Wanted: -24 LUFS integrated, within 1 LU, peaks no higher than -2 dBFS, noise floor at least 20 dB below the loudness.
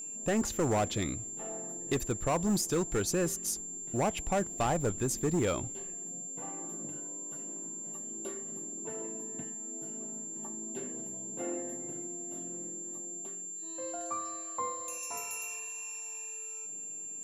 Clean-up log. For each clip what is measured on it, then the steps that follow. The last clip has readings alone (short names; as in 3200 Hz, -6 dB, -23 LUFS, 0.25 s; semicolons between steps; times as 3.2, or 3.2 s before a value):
clipped 0.9%; flat tops at -24.0 dBFS; steady tone 7300 Hz; tone level -39 dBFS; loudness -34.5 LUFS; peak -24.0 dBFS; loudness target -24.0 LUFS
-> clip repair -24 dBFS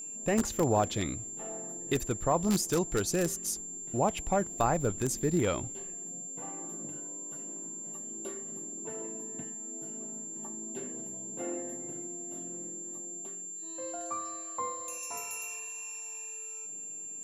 clipped 0.0%; steady tone 7300 Hz; tone level -39 dBFS
-> notch 7300 Hz, Q 30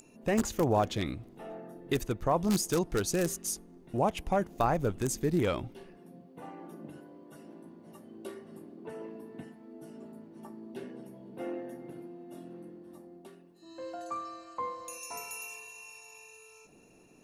steady tone none; loudness -33.0 LUFS; peak -14.5 dBFS; loudness target -24.0 LUFS
-> gain +9 dB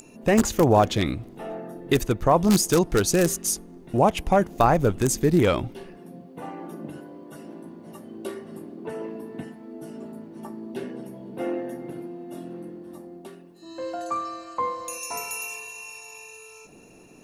loudness -24.0 LUFS; peak -5.5 dBFS; noise floor -48 dBFS